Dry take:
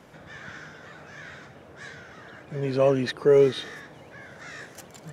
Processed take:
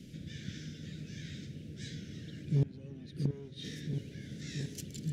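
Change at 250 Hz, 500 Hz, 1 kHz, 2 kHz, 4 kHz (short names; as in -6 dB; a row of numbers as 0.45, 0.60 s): -6.0 dB, -25.5 dB, under -25 dB, -15.0 dB, -8.0 dB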